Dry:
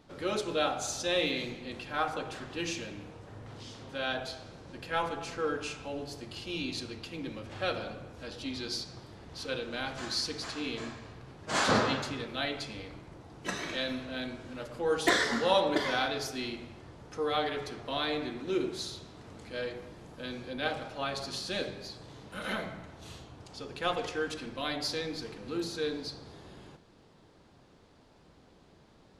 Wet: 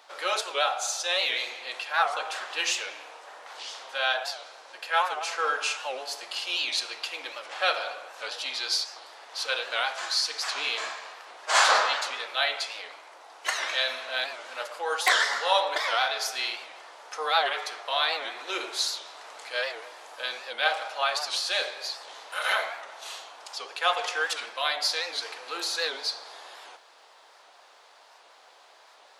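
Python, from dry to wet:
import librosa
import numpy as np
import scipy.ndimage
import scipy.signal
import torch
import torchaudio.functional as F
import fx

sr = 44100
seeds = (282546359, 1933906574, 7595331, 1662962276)

y = scipy.signal.sosfilt(scipy.signal.butter(4, 670.0, 'highpass', fs=sr, output='sos'), x)
y = fx.rider(y, sr, range_db=3, speed_s=0.5)
y = fx.record_warp(y, sr, rpm=78.0, depth_cents=160.0)
y = y * librosa.db_to_amplitude(8.5)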